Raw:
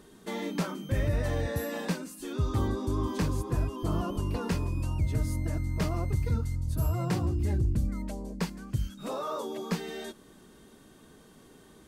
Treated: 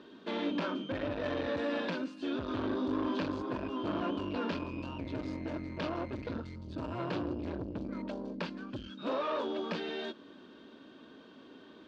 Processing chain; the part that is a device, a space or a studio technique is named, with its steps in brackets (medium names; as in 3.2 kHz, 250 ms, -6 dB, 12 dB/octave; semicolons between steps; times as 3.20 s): guitar amplifier (valve stage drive 32 dB, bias 0.5; tone controls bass -14 dB, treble -7 dB; cabinet simulation 97–4200 Hz, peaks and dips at 150 Hz -5 dB, 270 Hz +6 dB, 430 Hz -6 dB, 780 Hz -9 dB, 1.2 kHz -5 dB, 2 kHz -10 dB); trim +9 dB